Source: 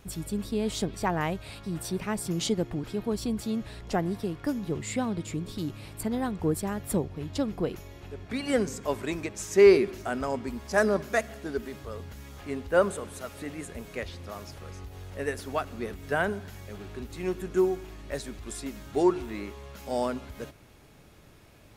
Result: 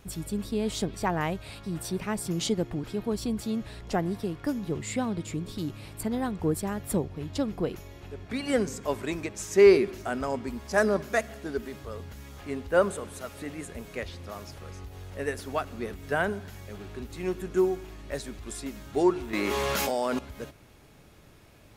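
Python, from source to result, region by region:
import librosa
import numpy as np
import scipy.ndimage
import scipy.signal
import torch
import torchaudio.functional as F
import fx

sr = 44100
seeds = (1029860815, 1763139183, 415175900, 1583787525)

y = fx.chain(x, sr, fx.highpass(hz=360.0, slope=6),
    fx.env_flatten(amount_pct=100), at=(19.33, 20.19))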